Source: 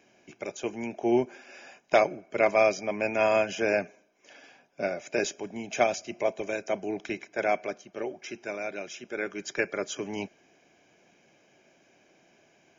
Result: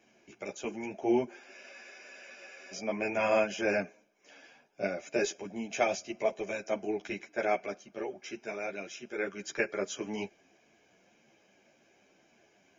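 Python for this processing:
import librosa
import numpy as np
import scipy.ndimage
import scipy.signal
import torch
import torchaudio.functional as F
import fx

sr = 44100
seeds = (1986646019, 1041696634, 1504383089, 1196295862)

y = fx.spec_freeze(x, sr, seeds[0], at_s=1.55, hold_s=1.18)
y = fx.ensemble(y, sr)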